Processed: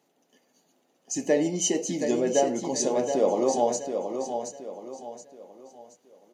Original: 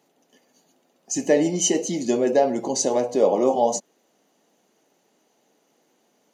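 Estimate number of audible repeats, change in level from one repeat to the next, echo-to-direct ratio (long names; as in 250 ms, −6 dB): 4, −8.5 dB, −6.5 dB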